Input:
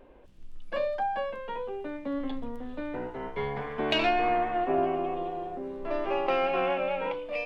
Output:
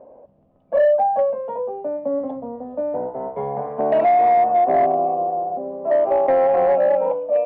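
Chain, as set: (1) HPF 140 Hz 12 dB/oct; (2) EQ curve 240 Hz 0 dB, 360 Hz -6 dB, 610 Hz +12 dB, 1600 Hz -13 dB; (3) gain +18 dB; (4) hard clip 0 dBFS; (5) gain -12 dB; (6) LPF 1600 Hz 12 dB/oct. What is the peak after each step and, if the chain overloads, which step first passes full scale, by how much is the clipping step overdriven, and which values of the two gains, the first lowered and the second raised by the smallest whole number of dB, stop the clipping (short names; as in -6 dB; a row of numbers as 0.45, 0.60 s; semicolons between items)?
-11.5, -11.0, +7.0, 0.0, -12.0, -11.5 dBFS; step 3, 7.0 dB; step 3 +11 dB, step 5 -5 dB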